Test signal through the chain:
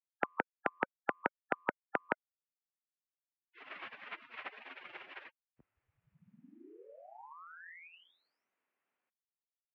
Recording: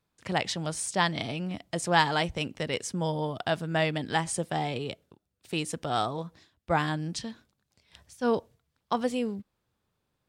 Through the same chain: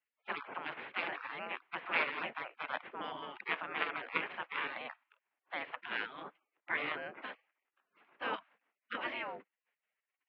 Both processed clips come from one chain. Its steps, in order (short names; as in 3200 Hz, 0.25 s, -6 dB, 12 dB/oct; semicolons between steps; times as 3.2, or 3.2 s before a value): spectral gate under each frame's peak -25 dB weak; mistuned SSB -86 Hz 310–2600 Hz; gain +13 dB